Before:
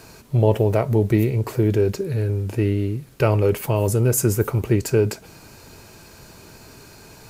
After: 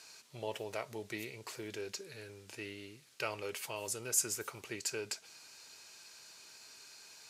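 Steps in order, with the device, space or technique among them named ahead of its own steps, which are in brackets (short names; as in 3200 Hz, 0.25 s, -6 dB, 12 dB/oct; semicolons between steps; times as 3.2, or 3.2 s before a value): piezo pickup straight into a mixer (LPF 5400 Hz 12 dB/oct; differentiator); gain +1.5 dB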